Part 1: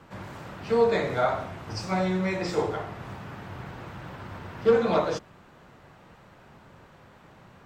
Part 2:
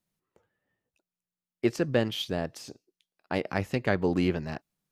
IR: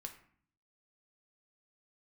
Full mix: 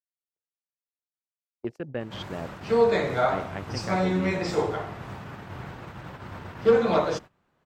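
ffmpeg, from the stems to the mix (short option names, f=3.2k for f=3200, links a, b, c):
-filter_complex "[0:a]adelay=2000,volume=0.5dB,asplit=2[a][b];[b]volume=-17dB[c];[1:a]dynaudnorm=f=140:g=3:m=15dB,afwtdn=0.0447,volume=-18dB[d];[2:a]atrim=start_sample=2205[e];[c][e]afir=irnorm=-1:irlink=0[f];[a][d][f]amix=inputs=3:normalize=0,agate=range=-19dB:threshold=-39dB:ratio=16:detection=peak"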